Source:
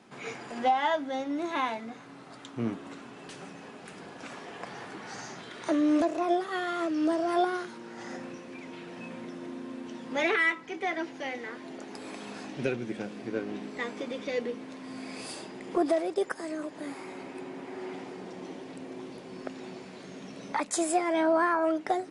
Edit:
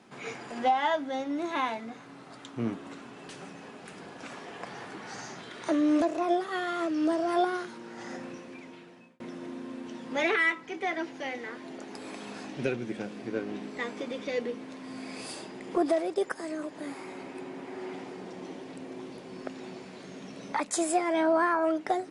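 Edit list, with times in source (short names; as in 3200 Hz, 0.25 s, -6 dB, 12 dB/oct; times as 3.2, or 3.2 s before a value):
8.4–9.2 fade out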